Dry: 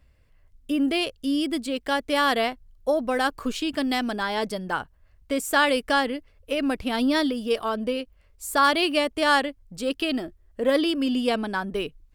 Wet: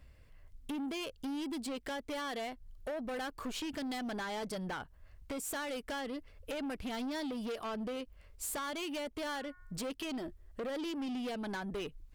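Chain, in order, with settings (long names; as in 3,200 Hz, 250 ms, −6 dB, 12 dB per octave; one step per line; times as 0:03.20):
0:09.17–0:09.89: hum removal 362.4 Hz, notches 6
downward compressor 6 to 1, threshold −32 dBFS, peak gain reduction 16.5 dB
soft clipping −36.5 dBFS, distortion −9 dB
level +1.5 dB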